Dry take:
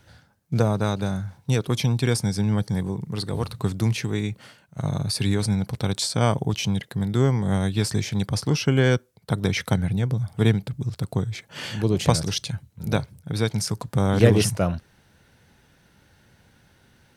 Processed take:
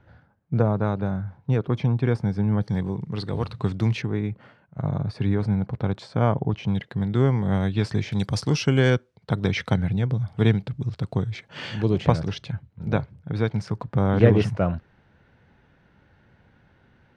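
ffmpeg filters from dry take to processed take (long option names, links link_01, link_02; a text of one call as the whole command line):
ffmpeg -i in.wav -af "asetnsamples=nb_out_samples=441:pad=0,asendcmd='2.61 lowpass f 3500;4.02 lowpass f 1600;6.68 lowpass f 3000;8.12 lowpass f 6900;8.9 lowpass f 3800;11.98 lowpass f 2200',lowpass=1600" out.wav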